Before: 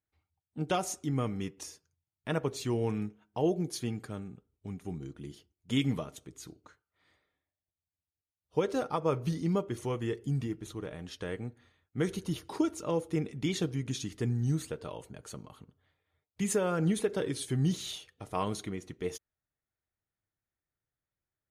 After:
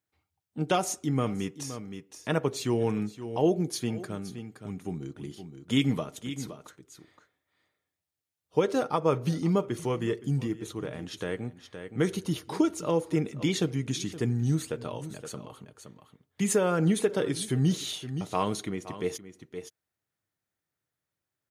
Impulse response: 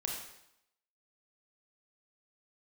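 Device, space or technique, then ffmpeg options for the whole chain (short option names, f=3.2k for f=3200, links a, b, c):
ducked delay: -filter_complex "[0:a]highpass=110,asplit=3[a][b][c];[b]adelay=519,volume=-8.5dB[d];[c]apad=whole_len=971460[e];[d][e]sidechaincompress=threshold=-44dB:ratio=4:attack=8.8:release=274[f];[a][f]amix=inputs=2:normalize=0,volume=4.5dB"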